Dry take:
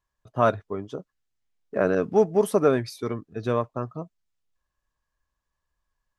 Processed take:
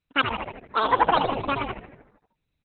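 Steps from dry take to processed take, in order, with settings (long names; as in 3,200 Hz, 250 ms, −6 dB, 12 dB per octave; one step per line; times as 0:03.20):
echo with shifted repeats 179 ms, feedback 60%, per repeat −70 Hz, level −5 dB
wrong playback speed 33 rpm record played at 78 rpm
Opus 8 kbit/s 48,000 Hz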